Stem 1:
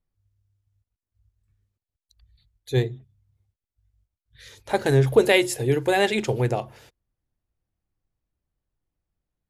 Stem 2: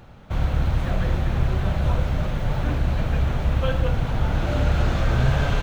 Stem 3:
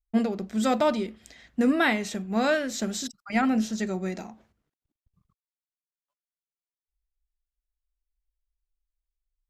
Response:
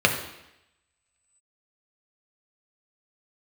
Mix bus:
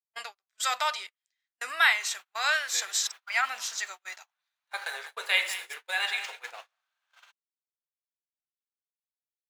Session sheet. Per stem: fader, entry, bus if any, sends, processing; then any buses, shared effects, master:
-10.5 dB, 0.00 s, send -12.5 dB, echo send -7 dB, median filter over 3 samples; high shelf 2200 Hz +3 dB
-1.5 dB, 1.70 s, no send, no echo send, high shelf 3200 Hz +8.5 dB; compressor 2:1, threshold -29 dBFS, peak gain reduction 8.5 dB; auto duck -8 dB, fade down 0.95 s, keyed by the first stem
+2.0 dB, 0.00 s, no send, no echo send, high shelf 2200 Hz +5 dB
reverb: on, RT60 0.85 s, pre-delay 3 ms
echo: feedback echo 0.2 s, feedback 23%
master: HPF 1000 Hz 24 dB/oct; gate -39 dBFS, range -37 dB

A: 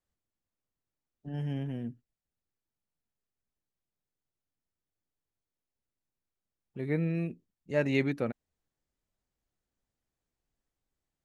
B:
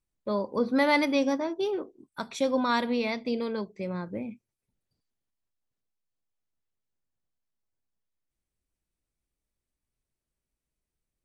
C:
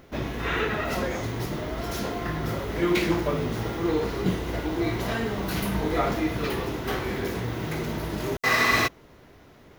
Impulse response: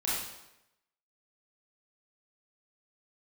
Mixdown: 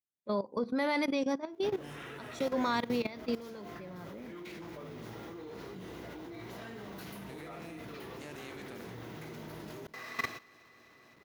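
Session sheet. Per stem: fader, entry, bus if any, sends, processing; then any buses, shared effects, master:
-3.5 dB, 0.50 s, no send, no echo send, spectral contrast lowered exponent 0.53; compressor, threshold -32 dBFS, peak gain reduction 10.5 dB
-1.5 dB, 0.00 s, no send, no echo send, dry
-10.0 dB, 1.50 s, no send, echo send -18 dB, dry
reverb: off
echo: feedback echo 0.254 s, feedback 57%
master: HPF 120 Hz 12 dB/oct; level quantiser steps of 15 dB

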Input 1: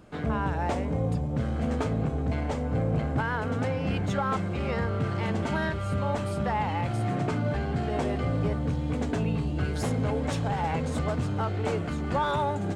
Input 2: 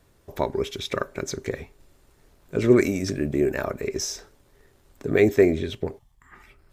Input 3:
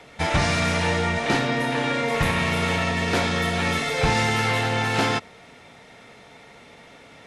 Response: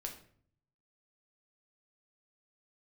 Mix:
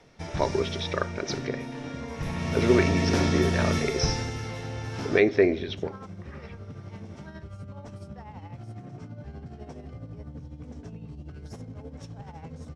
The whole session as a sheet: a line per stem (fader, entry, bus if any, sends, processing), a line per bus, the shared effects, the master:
-13.5 dB, 1.70 s, no send, low shelf 420 Hz +9 dB; limiter -18 dBFS, peak gain reduction 8.5 dB; tremolo 12 Hz, depth 59%
+2.5 dB, 0.00 s, send -10.5 dB, steep low-pass 4600 Hz; low shelf 210 Hz -10.5 dB; noise-modulated level, depth 60%
2.17 s -16.5 dB -> 2.77 s -5.5 dB -> 3.75 s -5.5 dB -> 4.4 s -16 dB, 0.00 s, send -7.5 dB, low shelf 500 Hz +11.5 dB; auto duck -8 dB, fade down 0.25 s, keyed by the second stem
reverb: on, RT60 0.55 s, pre-delay 6 ms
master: bell 5600 Hz +12.5 dB 0.33 oct

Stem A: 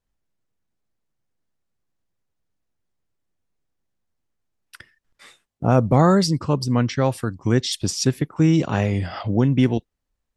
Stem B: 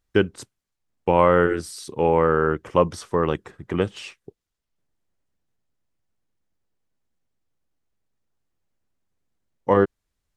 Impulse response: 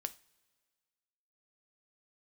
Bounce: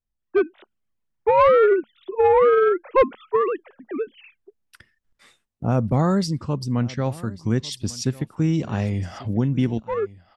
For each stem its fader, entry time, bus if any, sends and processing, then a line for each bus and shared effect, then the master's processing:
-12.0 dB, 0.00 s, no send, echo send -20 dB, low shelf 120 Hz +7.5 dB
-1.0 dB, 0.20 s, no send, no echo send, sine-wave speech; soft clip -13 dBFS, distortion -16 dB; auto duck -13 dB, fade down 1.45 s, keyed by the first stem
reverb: off
echo: echo 1.145 s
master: bell 220 Hz +5.5 dB 0.2 oct; AGC gain up to 5.5 dB

